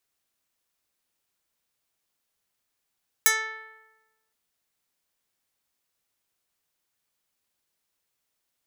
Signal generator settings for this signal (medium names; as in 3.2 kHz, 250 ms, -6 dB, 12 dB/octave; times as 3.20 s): plucked string A4, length 1.07 s, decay 1.15 s, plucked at 0.1, medium